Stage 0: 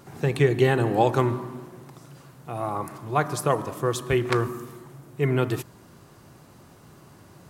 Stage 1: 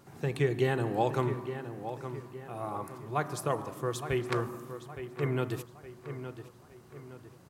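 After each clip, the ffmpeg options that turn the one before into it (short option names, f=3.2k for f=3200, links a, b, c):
-filter_complex "[0:a]asplit=2[a][b];[b]adelay=866,lowpass=f=3.2k:p=1,volume=-10dB,asplit=2[c][d];[d]adelay=866,lowpass=f=3.2k:p=1,volume=0.44,asplit=2[e][f];[f]adelay=866,lowpass=f=3.2k:p=1,volume=0.44,asplit=2[g][h];[h]adelay=866,lowpass=f=3.2k:p=1,volume=0.44,asplit=2[i][j];[j]adelay=866,lowpass=f=3.2k:p=1,volume=0.44[k];[a][c][e][g][i][k]amix=inputs=6:normalize=0,volume=-8dB"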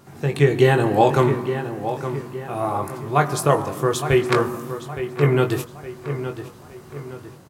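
-filter_complex "[0:a]dynaudnorm=f=280:g=3:m=5dB,asplit=2[a][b];[b]adelay=21,volume=-6dB[c];[a][c]amix=inputs=2:normalize=0,volume=7dB"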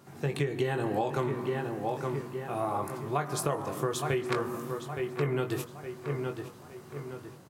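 -af "highpass=100,acompressor=threshold=-20dB:ratio=10,volume=-5.5dB"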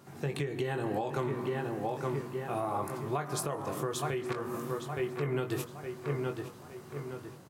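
-af "alimiter=limit=-22.5dB:level=0:latency=1:release=236"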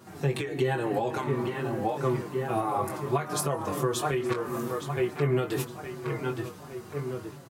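-filter_complex "[0:a]asplit=2[a][b];[b]adelay=5.7,afreqshift=-2.8[c];[a][c]amix=inputs=2:normalize=1,volume=8dB"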